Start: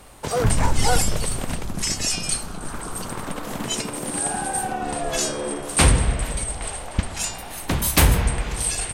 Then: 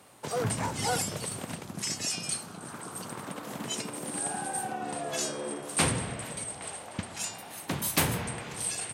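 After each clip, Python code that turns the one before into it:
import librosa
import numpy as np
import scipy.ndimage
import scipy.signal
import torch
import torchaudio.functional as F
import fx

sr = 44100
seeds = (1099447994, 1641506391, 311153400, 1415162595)

y = scipy.signal.sosfilt(scipy.signal.butter(4, 110.0, 'highpass', fs=sr, output='sos'), x)
y = y * 10.0 ** (-8.0 / 20.0)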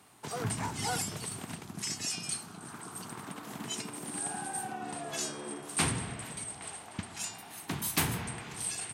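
y = fx.peak_eq(x, sr, hz=540.0, db=-12.5, octaves=0.29)
y = y * 10.0 ** (-3.0 / 20.0)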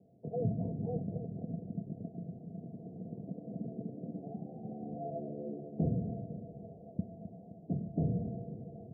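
y = scipy.signal.sosfilt(scipy.signal.cheby1(6, 9, 700.0, 'lowpass', fs=sr, output='sos'), x)
y = fx.echo_feedback(y, sr, ms=261, feedback_pct=53, wet_db=-14)
y = y * 10.0 ** (6.0 / 20.0)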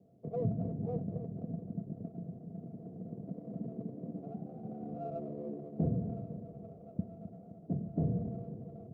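y = fx.running_max(x, sr, window=3)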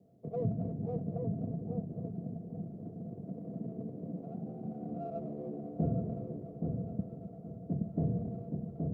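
y = fx.echo_filtered(x, sr, ms=823, feedback_pct=27, hz=1200.0, wet_db=-3.5)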